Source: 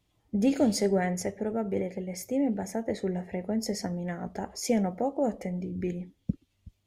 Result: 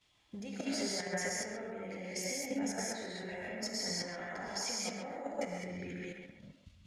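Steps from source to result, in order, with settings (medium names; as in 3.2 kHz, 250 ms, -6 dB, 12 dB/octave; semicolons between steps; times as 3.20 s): compression 16:1, threshold -32 dBFS, peak gain reduction 14 dB; peak limiter -31.5 dBFS, peak gain reduction 9.5 dB; tilt shelf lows -9 dB, about 730 Hz; gated-style reverb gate 230 ms rising, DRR -4.5 dB; level held to a coarse grid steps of 9 dB; distance through air 67 m; band-passed feedback delay 134 ms, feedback 40%, band-pass 1.2 kHz, level -3 dB; trim +2 dB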